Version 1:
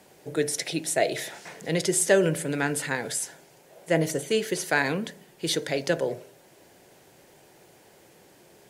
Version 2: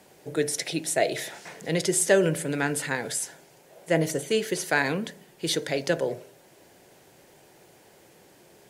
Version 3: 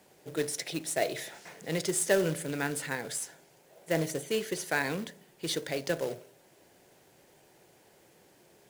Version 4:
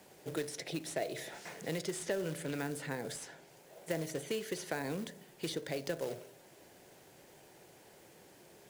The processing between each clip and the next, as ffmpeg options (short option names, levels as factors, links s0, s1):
-af anull
-af "acrusher=bits=3:mode=log:mix=0:aa=0.000001,volume=0.501"
-filter_complex "[0:a]acrossover=split=780|5000[s0][s1][s2];[s0]acompressor=threshold=0.0126:ratio=4[s3];[s1]acompressor=threshold=0.00447:ratio=4[s4];[s2]acompressor=threshold=0.00251:ratio=4[s5];[s3][s4][s5]amix=inputs=3:normalize=0,volume=1.26"